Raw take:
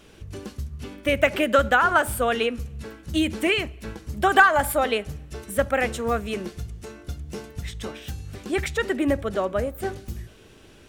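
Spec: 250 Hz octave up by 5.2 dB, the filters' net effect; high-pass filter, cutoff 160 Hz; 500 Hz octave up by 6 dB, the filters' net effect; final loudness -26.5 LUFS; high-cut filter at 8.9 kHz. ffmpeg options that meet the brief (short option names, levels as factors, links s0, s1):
-af "highpass=160,lowpass=8900,equalizer=f=250:t=o:g=5,equalizer=f=500:t=o:g=6,volume=0.447"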